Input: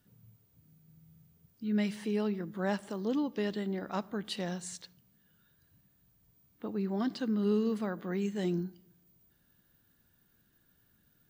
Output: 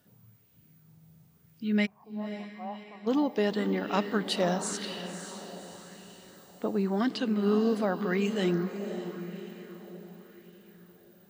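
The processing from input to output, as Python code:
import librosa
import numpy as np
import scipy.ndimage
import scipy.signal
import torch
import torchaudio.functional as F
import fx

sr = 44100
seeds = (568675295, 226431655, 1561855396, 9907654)

p1 = fx.highpass(x, sr, hz=140.0, slope=6)
p2 = fx.rider(p1, sr, range_db=10, speed_s=0.5)
p3 = p1 + (p2 * librosa.db_to_amplitude(-1.0))
p4 = fx.formant_cascade(p3, sr, vowel='a', at=(1.85, 3.06), fade=0.02)
p5 = fx.echo_diffused(p4, sr, ms=561, feedback_pct=48, wet_db=-9)
y = fx.bell_lfo(p5, sr, hz=0.9, low_hz=600.0, high_hz=2900.0, db=7)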